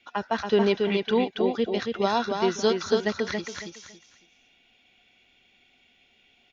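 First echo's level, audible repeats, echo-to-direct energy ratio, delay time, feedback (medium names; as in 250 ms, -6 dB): -4.5 dB, 3, -4.0 dB, 278 ms, 25%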